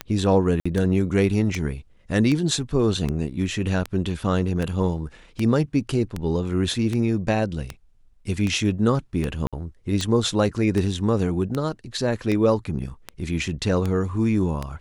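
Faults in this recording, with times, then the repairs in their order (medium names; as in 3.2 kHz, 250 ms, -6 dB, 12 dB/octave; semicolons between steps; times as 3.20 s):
tick 78 rpm -13 dBFS
0.60–0.66 s: dropout 55 ms
9.47–9.53 s: dropout 56 ms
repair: de-click; interpolate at 0.60 s, 55 ms; interpolate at 9.47 s, 56 ms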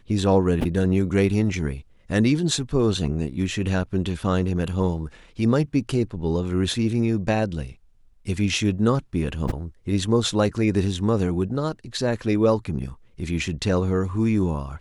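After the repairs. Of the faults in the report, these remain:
nothing left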